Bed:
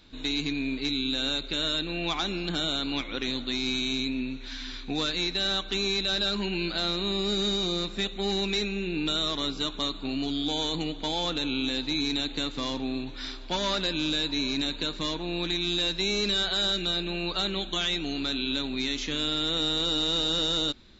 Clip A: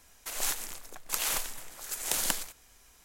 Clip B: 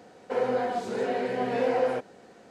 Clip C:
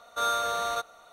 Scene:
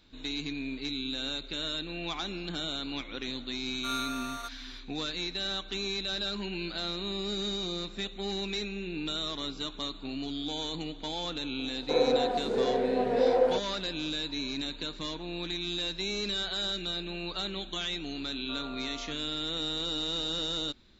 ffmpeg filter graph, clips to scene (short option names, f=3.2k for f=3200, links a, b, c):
-filter_complex "[3:a]asplit=2[a][b];[0:a]volume=-6dB[c];[a]highpass=1.1k[d];[2:a]equalizer=f=410:t=o:w=2.3:g=9.5[e];[b]lowpass=1.3k[f];[d]atrim=end=1.12,asetpts=PTS-STARTPTS,volume=-6.5dB,afade=t=in:d=0.004:c=hsin,afade=t=out:st=1.116:d=0.004:c=hsin,adelay=3670[g];[e]atrim=end=2.5,asetpts=PTS-STARTPTS,volume=-7.5dB,afade=t=in:d=0.004:c=hsin,afade=t=out:st=2.496:d=0.004:c=hsin,adelay=11590[h];[f]atrim=end=1.12,asetpts=PTS-STARTPTS,volume=-14dB,afade=t=in:d=0.004:c=hsin,afade=t=out:st=1.116:d=0.004:c=hsin,adelay=18320[i];[c][g][h][i]amix=inputs=4:normalize=0"